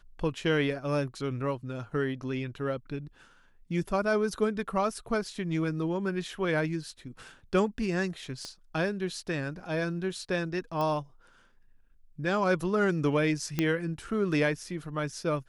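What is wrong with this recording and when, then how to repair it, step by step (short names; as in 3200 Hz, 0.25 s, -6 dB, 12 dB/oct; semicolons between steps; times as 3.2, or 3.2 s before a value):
8.45 pop -25 dBFS
10.81 pop -21 dBFS
13.59 pop -13 dBFS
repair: de-click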